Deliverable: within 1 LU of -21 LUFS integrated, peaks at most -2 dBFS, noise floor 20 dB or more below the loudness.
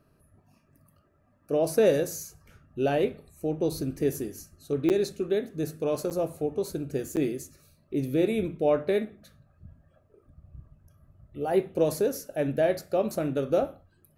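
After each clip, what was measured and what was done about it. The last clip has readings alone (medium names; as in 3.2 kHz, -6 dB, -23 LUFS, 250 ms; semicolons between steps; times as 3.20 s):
dropouts 3; longest dropout 8.5 ms; loudness -28.0 LUFS; peak level -10.5 dBFS; loudness target -21.0 LUFS
-> interpolate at 4.89/6.10/7.16 s, 8.5 ms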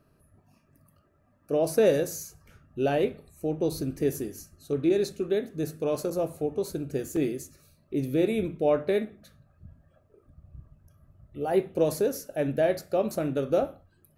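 dropouts 0; loudness -28.0 LUFS; peak level -10.5 dBFS; loudness target -21.0 LUFS
-> trim +7 dB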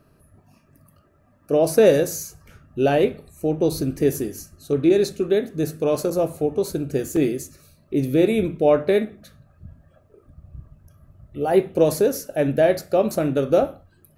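loudness -21.0 LUFS; peak level -3.5 dBFS; noise floor -58 dBFS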